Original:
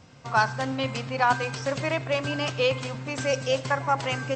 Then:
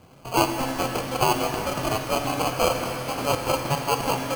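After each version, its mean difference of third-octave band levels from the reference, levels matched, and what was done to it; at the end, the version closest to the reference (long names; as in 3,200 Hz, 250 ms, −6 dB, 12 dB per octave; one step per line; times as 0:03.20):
10.0 dB: parametric band 3,900 Hz +13 dB 1.4 octaves
decimation without filtering 24×
reverb with rising layers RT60 2.9 s, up +12 semitones, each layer −8 dB, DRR 6 dB
level −2 dB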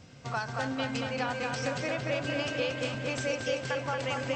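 4.0 dB: parametric band 1,000 Hz −6.5 dB 0.76 octaves
downward compressor, threshold −30 dBFS, peak gain reduction 11 dB
on a send: feedback echo with a low-pass in the loop 227 ms, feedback 72%, low-pass 4,500 Hz, level −3 dB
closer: second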